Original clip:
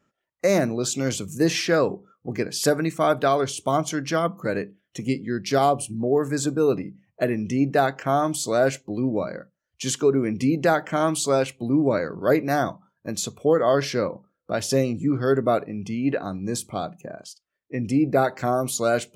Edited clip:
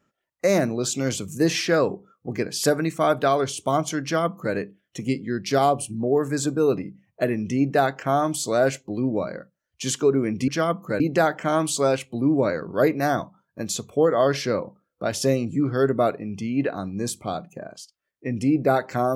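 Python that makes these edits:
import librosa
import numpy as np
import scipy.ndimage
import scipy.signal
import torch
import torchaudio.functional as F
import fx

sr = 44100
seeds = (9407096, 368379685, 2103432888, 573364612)

y = fx.edit(x, sr, fx.duplicate(start_s=4.03, length_s=0.52, to_s=10.48), tone=tone)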